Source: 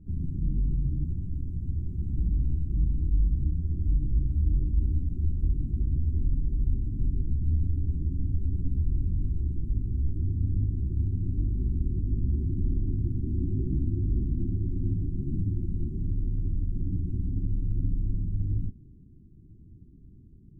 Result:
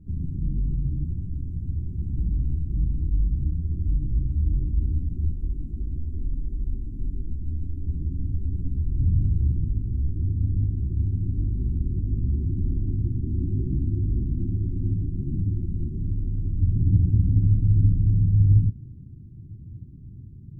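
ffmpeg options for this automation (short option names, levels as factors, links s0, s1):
-af "asetnsamples=n=441:p=0,asendcmd='5.33 equalizer g -6;7.86 equalizer g 1.5;8.99 equalizer g 11;9.7 equalizer g 4;16.59 equalizer g 14',equalizer=f=110:t=o:w=1.7:g=3"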